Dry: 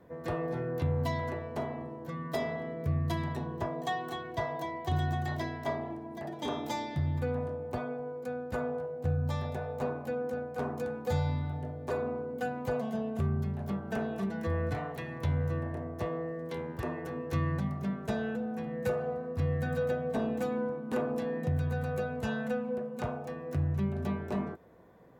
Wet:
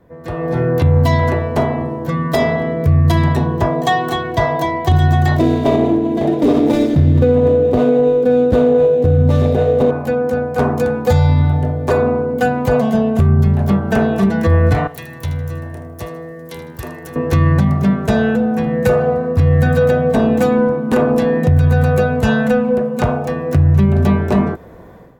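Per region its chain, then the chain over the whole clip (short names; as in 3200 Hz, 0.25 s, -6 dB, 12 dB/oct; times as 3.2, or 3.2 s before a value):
5.39–9.91 median filter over 25 samples + notch 880 Hz, Q 17 + small resonant body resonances 290/440/3700 Hz, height 11 dB, ringing for 25 ms
14.87–17.16 pre-emphasis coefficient 0.8 + thin delay 78 ms, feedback 36%, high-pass 1900 Hz, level -11 dB
whole clip: AGC gain up to 14 dB; low shelf 72 Hz +12 dB; limiter -9 dBFS; gain +4.5 dB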